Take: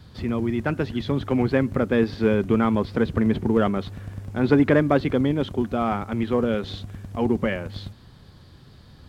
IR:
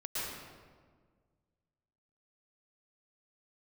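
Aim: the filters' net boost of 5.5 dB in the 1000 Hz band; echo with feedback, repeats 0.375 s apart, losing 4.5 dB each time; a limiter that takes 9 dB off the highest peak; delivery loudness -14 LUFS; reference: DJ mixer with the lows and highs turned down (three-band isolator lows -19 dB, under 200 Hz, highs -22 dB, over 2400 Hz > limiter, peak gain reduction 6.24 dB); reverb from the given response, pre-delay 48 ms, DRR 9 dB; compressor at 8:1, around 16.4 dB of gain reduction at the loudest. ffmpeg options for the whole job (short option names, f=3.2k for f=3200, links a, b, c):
-filter_complex "[0:a]equalizer=f=1k:t=o:g=8,acompressor=threshold=-29dB:ratio=8,alimiter=level_in=0.5dB:limit=-24dB:level=0:latency=1,volume=-0.5dB,aecho=1:1:375|750|1125|1500|1875|2250|2625|3000|3375:0.596|0.357|0.214|0.129|0.0772|0.0463|0.0278|0.0167|0.01,asplit=2[a][b];[1:a]atrim=start_sample=2205,adelay=48[c];[b][c]afir=irnorm=-1:irlink=0,volume=-13dB[d];[a][d]amix=inputs=2:normalize=0,acrossover=split=200 2400:gain=0.112 1 0.0794[e][f][g];[e][f][g]amix=inputs=3:normalize=0,volume=24dB,alimiter=limit=-3.5dB:level=0:latency=1"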